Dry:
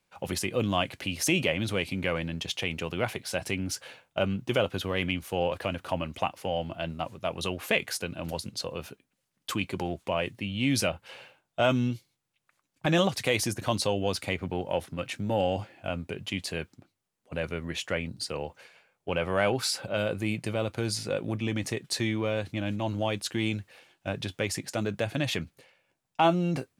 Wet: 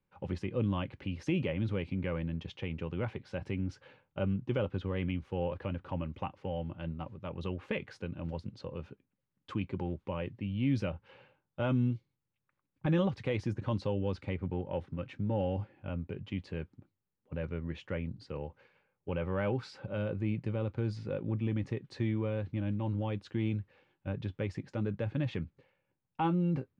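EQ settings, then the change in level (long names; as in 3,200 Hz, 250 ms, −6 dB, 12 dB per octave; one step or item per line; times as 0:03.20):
Butterworth band-reject 680 Hz, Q 5
head-to-tape spacing loss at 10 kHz 34 dB
low-shelf EQ 200 Hz +8 dB
−5.5 dB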